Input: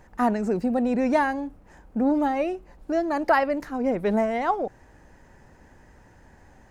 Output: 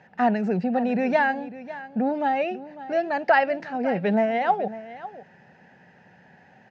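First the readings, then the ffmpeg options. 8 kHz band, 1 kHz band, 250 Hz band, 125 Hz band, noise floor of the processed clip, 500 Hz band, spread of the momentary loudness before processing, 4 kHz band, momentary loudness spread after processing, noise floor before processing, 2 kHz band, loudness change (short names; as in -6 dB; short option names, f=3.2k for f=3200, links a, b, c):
n/a, +2.0 dB, -1.5 dB, +3.5 dB, -55 dBFS, +1.0 dB, 9 LU, +3.0 dB, 15 LU, -54 dBFS, +4.5 dB, +0.5 dB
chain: -af "highpass=f=130:w=0.5412,highpass=f=130:w=1.3066,equalizer=f=180:t=q:w=4:g=7,equalizer=f=310:t=q:w=4:g=-9,equalizer=f=760:t=q:w=4:g=6,equalizer=f=1.1k:t=q:w=4:g=-10,equalizer=f=1.7k:t=q:w=4:g=6,equalizer=f=2.7k:t=q:w=4:g=7,lowpass=f=4.9k:w=0.5412,lowpass=f=4.9k:w=1.3066,aecho=1:1:550:0.168"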